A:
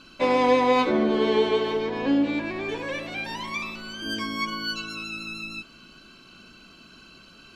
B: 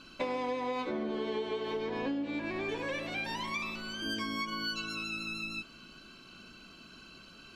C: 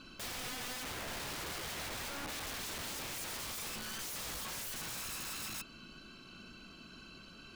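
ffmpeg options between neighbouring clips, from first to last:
ffmpeg -i in.wav -af "acompressor=threshold=-28dB:ratio=12,volume=-3dB" out.wav
ffmpeg -i in.wav -af "aeval=exprs='(mod(63.1*val(0)+1,2)-1)/63.1':channel_layout=same,lowshelf=frequency=220:gain=4.5,volume=-1.5dB" out.wav

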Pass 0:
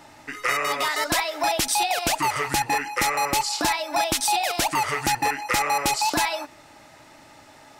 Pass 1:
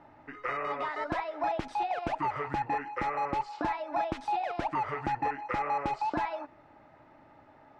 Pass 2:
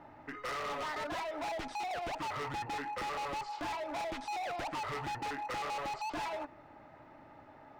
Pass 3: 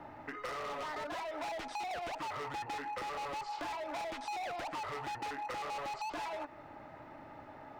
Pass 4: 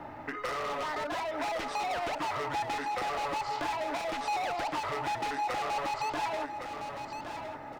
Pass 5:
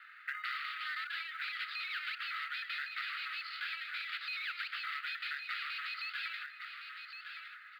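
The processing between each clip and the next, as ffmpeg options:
ffmpeg -i in.wav -af "lowpass=1400,volume=-6dB" out.wav
ffmpeg -i in.wav -af "asoftclip=type=hard:threshold=-37.5dB,volume=1.5dB" out.wav
ffmpeg -i in.wav -filter_complex "[0:a]acrossover=split=360|990[link_01][link_02][link_03];[link_01]acompressor=threshold=-58dB:ratio=4[link_04];[link_02]acompressor=threshold=-47dB:ratio=4[link_05];[link_03]acompressor=threshold=-49dB:ratio=4[link_06];[link_04][link_05][link_06]amix=inputs=3:normalize=0,volume=4.5dB" out.wav
ffmpeg -i in.wav -af "aecho=1:1:1112|2224|3336:0.422|0.105|0.0264,volume=6dB" out.wav
ffmpeg -i in.wav -af "asuperpass=centerf=2500:order=20:qfactor=0.74,acrusher=bits=8:mode=log:mix=0:aa=0.000001,volume=1dB" out.wav

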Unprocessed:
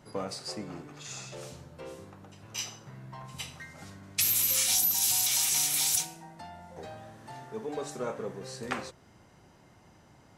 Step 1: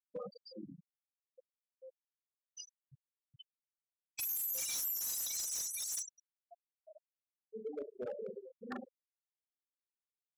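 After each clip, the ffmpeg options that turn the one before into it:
ffmpeg -i in.wav -af "aecho=1:1:40|104|206.4|370.2|632.4:0.631|0.398|0.251|0.158|0.1,afftfilt=real='re*gte(hypot(re,im),0.0891)':imag='im*gte(hypot(re,im),0.0891)':win_size=1024:overlap=0.75,volume=28.5dB,asoftclip=hard,volume=-28.5dB,volume=-6.5dB" out.wav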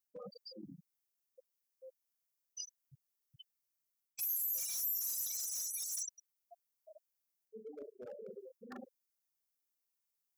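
ffmpeg -i in.wav -af "areverse,acompressor=threshold=-46dB:ratio=6,areverse,aexciter=amount=2.2:drive=5.6:freq=5000" out.wav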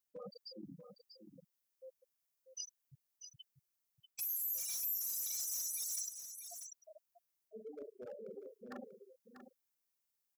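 ffmpeg -i in.wav -af "alimiter=level_in=7.5dB:limit=-24dB:level=0:latency=1,volume=-7.5dB,aecho=1:1:641:0.355" out.wav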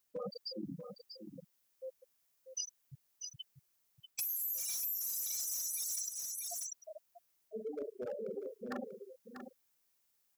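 ffmpeg -i in.wav -af "acompressor=threshold=-44dB:ratio=6,volume=8.5dB" out.wav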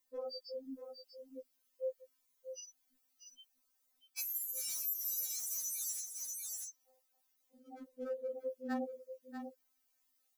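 ffmpeg -i in.wav -af "afftfilt=real='re*3.46*eq(mod(b,12),0)':imag='im*3.46*eq(mod(b,12),0)':win_size=2048:overlap=0.75,volume=1dB" out.wav

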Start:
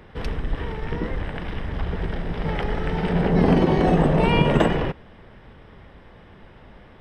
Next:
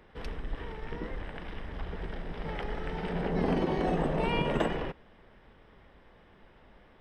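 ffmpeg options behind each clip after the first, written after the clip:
ffmpeg -i in.wav -af "equalizer=frequency=110:width_type=o:width=1.6:gain=-6.5,volume=-9dB" out.wav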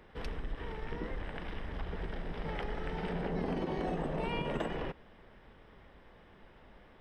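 ffmpeg -i in.wav -af "acompressor=threshold=-33dB:ratio=3" out.wav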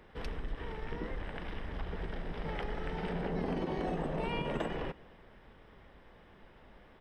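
ffmpeg -i in.wav -af "aecho=1:1:239:0.0668" out.wav

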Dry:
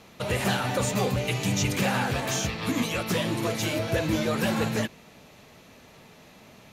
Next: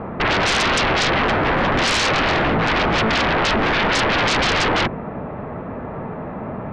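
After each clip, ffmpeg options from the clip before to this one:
ffmpeg -i in.wav -af "lowpass=frequency=1400:width=0.5412,lowpass=frequency=1400:width=1.3066,aeval=exprs='0.178*sin(PI/2*10*val(0)/0.178)':channel_layout=same" out.wav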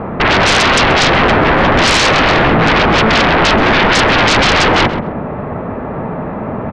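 ffmpeg -i in.wav -filter_complex "[0:a]asplit=2[link_01][link_02];[link_02]adelay=131,lowpass=frequency=1200:poles=1,volume=-7dB,asplit=2[link_03][link_04];[link_04]adelay=131,lowpass=frequency=1200:poles=1,volume=0.33,asplit=2[link_05][link_06];[link_06]adelay=131,lowpass=frequency=1200:poles=1,volume=0.33,asplit=2[link_07][link_08];[link_08]adelay=131,lowpass=frequency=1200:poles=1,volume=0.33[link_09];[link_01][link_03][link_05][link_07][link_09]amix=inputs=5:normalize=0,volume=7.5dB" out.wav

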